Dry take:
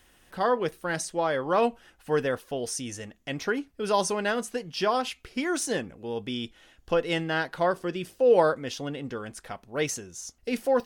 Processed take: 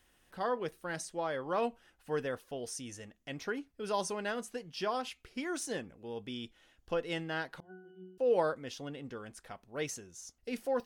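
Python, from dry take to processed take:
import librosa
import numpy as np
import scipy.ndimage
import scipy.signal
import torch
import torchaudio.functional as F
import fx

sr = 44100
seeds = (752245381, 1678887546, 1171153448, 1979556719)

y = fx.octave_resonator(x, sr, note='F#', decay_s=0.74, at=(7.6, 8.18))
y = y * librosa.db_to_amplitude(-9.0)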